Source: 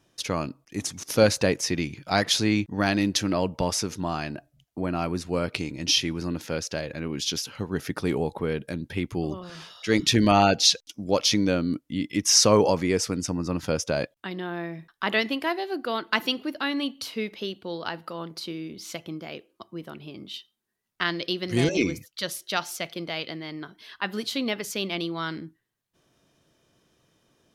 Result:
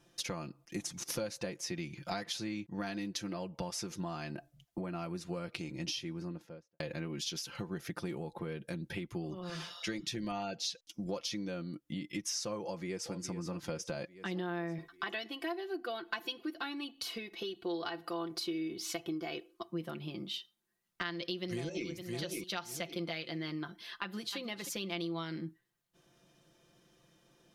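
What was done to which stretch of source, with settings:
5.60–6.80 s: studio fade out
12.63–13.13 s: echo throw 420 ms, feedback 50%, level -14.5 dB
14.78–19.70 s: comb 2.7 ms
21.13–21.87 s: echo throw 560 ms, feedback 20%, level -9 dB
23.95–24.37 s: echo throw 310 ms, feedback 15%, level -11.5 dB
whole clip: compression 12:1, threshold -34 dBFS; comb 5.8 ms, depth 64%; trim -2.5 dB

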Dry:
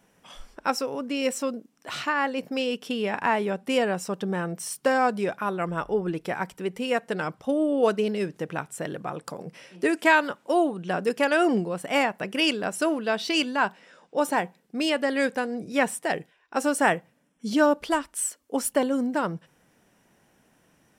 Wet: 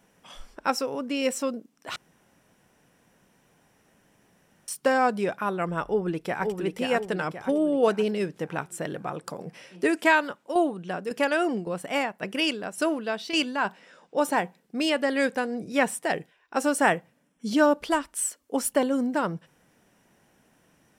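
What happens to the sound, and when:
1.96–4.68 s: room tone
5.86–6.56 s: echo throw 530 ms, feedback 50%, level -4.5 dB
10.00–13.65 s: tremolo saw down 1.8 Hz, depth 60%

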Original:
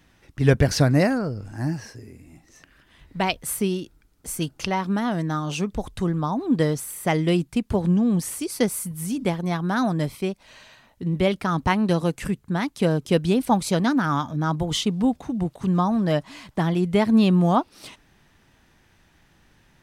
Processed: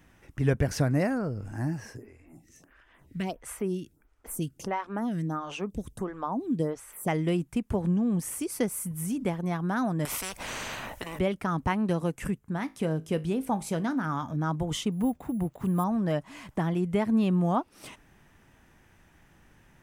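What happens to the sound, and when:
1.97–7.08 s: lamp-driven phase shifter 1.5 Hz
10.05–11.19 s: spectrum-flattening compressor 10:1
12.38–14.23 s: feedback comb 53 Hz, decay 0.26 s, mix 50%
14.92–15.84 s: careless resampling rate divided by 4×, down filtered, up hold
whole clip: compression 1.5:1, threshold -34 dBFS; peaking EQ 4.2 kHz -9.5 dB 0.76 oct

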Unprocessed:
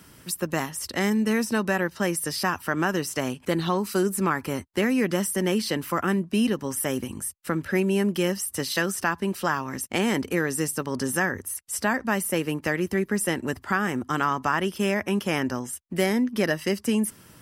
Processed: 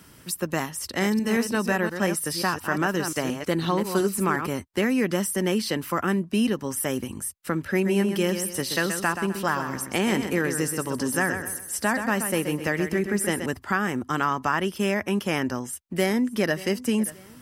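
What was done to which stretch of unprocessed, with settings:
0.84–4.47 s: chunks repeated in reverse 176 ms, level -7.5 dB
7.72–13.46 s: feedback delay 128 ms, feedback 36%, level -8 dB
15.48–16.60 s: echo throw 580 ms, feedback 35%, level -18 dB

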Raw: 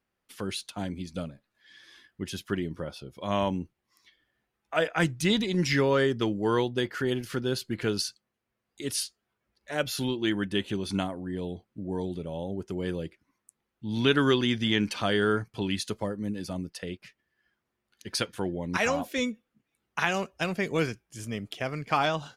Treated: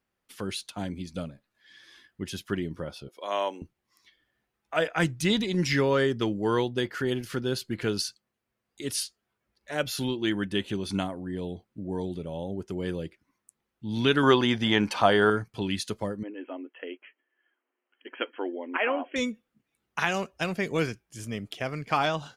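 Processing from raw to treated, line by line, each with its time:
3.08–3.62 s: high-pass 370 Hz 24 dB/octave
14.23–15.30 s: peaking EQ 840 Hz +12 dB 1.4 oct
16.23–19.16 s: brick-wall FIR band-pass 240–3300 Hz

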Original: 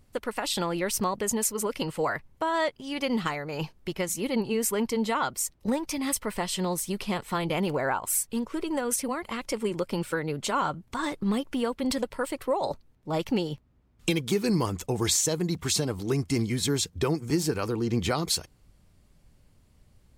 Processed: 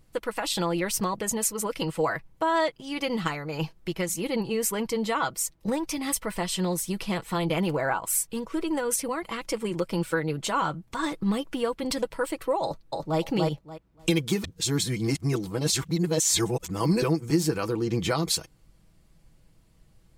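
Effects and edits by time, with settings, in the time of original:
12.63–13.19 s: echo throw 290 ms, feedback 20%, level -1.5 dB
14.44–17.02 s: reverse
whole clip: comb 6.1 ms, depth 46%

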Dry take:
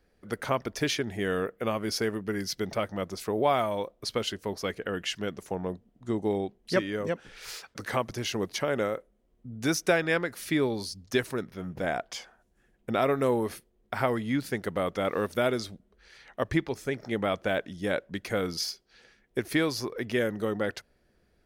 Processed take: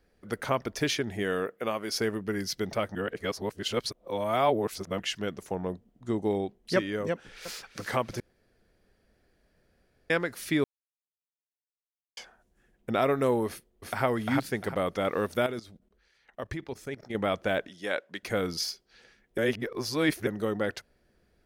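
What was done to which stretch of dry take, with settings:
1.22–1.93 s: high-pass 140 Hz -> 450 Hz 6 dB/octave
2.95–5.00 s: reverse
7.11–7.65 s: echo throw 340 ms, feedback 70%, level -10.5 dB
8.20–10.10 s: room tone
10.64–12.17 s: mute
13.47–14.04 s: echo throw 350 ms, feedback 30%, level -1.5 dB
15.46–17.15 s: level held to a coarse grid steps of 17 dB
17.68–18.23 s: frequency weighting A
19.38–20.27 s: reverse

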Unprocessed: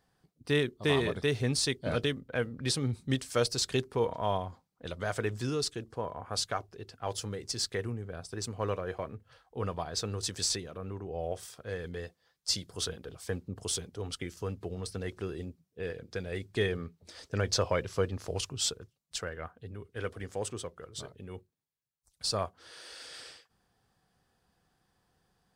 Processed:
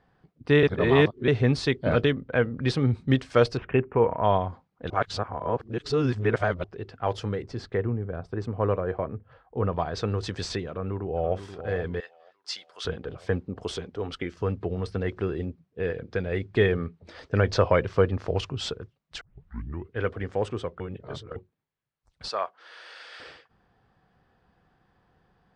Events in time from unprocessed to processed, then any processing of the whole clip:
0.63–1.28 s: reverse
3.57–4.24 s: elliptic low-pass 2.7 kHz
4.90–6.64 s: reverse
7.42–9.73 s: treble shelf 2.1 kHz -12 dB
10.68–11.36 s: echo throw 480 ms, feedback 50%, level -10 dB
12.00–12.85 s: Bessel high-pass 1.5 kHz
13.41–14.38 s: peaking EQ 110 Hz -7.5 dB 1.2 oct
19.21 s: tape start 0.68 s
20.80–21.36 s: reverse
22.28–23.20 s: Bessel high-pass 850 Hz
whole clip: low-pass 2.4 kHz 12 dB/octave; trim +8.5 dB

